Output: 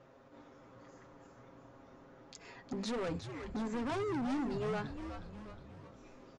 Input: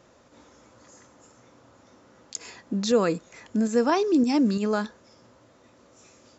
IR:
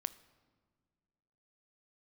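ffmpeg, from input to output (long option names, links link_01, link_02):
-filter_complex "[0:a]bandreject=frequency=50:width_type=h:width=6,bandreject=frequency=100:width_type=h:width=6,bandreject=frequency=150:width_type=h:width=6,bandreject=frequency=200:width_type=h:width=6,bandreject=frequency=250:width_type=h:width=6,aecho=1:1:7.4:0.59,alimiter=limit=-18dB:level=0:latency=1:release=336,adynamicsmooth=sensitivity=1:basefreq=3000,asoftclip=type=hard:threshold=-31dB,asplit=2[link_01][link_02];[link_02]asplit=7[link_03][link_04][link_05][link_06][link_07][link_08][link_09];[link_03]adelay=361,afreqshift=-110,volume=-8.5dB[link_10];[link_04]adelay=722,afreqshift=-220,volume=-13.7dB[link_11];[link_05]adelay=1083,afreqshift=-330,volume=-18.9dB[link_12];[link_06]adelay=1444,afreqshift=-440,volume=-24.1dB[link_13];[link_07]adelay=1805,afreqshift=-550,volume=-29.3dB[link_14];[link_08]adelay=2166,afreqshift=-660,volume=-34.5dB[link_15];[link_09]adelay=2527,afreqshift=-770,volume=-39.7dB[link_16];[link_10][link_11][link_12][link_13][link_14][link_15][link_16]amix=inputs=7:normalize=0[link_17];[link_01][link_17]amix=inputs=2:normalize=0,aresample=22050,aresample=44100,volume=-3.5dB"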